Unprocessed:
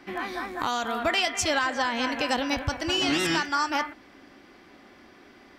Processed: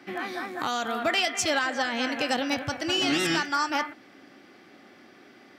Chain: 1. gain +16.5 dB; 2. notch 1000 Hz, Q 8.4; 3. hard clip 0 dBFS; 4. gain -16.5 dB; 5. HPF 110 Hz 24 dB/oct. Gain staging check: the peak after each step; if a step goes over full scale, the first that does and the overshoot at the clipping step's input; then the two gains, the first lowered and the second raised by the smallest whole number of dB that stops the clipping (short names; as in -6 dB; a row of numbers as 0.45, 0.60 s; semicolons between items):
+3.5, +3.5, 0.0, -16.5, -13.0 dBFS; step 1, 3.5 dB; step 1 +12.5 dB, step 4 -12.5 dB